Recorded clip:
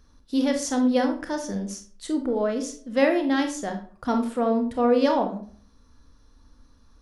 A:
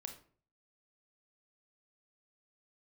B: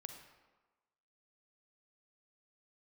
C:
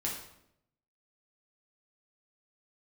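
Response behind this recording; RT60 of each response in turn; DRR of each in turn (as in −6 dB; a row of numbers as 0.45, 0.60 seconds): A; 0.45, 1.3, 0.75 seconds; 5.0, 5.0, −3.5 decibels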